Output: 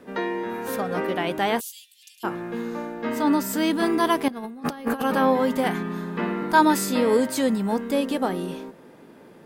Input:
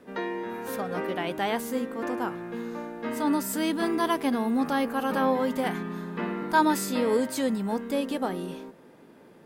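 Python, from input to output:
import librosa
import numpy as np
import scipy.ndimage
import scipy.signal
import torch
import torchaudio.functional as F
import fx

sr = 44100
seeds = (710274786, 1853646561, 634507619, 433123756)

y = fx.steep_highpass(x, sr, hz=2900.0, slope=48, at=(1.59, 2.23), fade=0.02)
y = fx.peak_eq(y, sr, hz=10000.0, db=-7.5, octaves=0.47, at=(2.94, 3.71))
y = fx.over_compress(y, sr, threshold_db=-33.0, ratio=-0.5, at=(4.28, 5.02))
y = y * librosa.db_to_amplitude(4.5)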